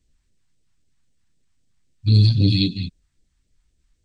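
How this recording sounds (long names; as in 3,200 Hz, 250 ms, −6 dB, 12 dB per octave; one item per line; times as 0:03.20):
phaser sweep stages 2, 3.8 Hz, lowest notch 440–1,100 Hz
MP2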